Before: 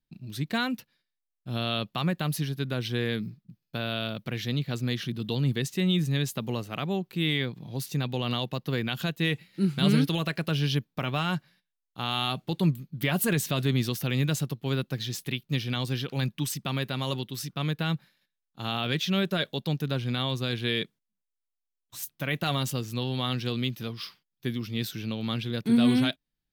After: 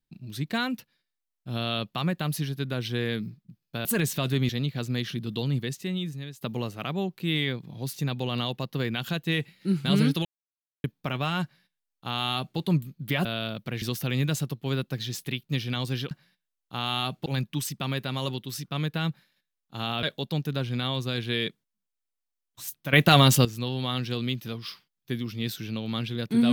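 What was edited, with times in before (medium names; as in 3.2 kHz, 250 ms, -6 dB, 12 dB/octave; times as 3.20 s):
3.85–4.42 s: swap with 13.18–13.82 s
5.29–6.34 s: fade out, to -17 dB
10.18–10.77 s: mute
11.36–12.51 s: copy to 16.11 s
18.88–19.38 s: delete
22.28–22.80 s: gain +11 dB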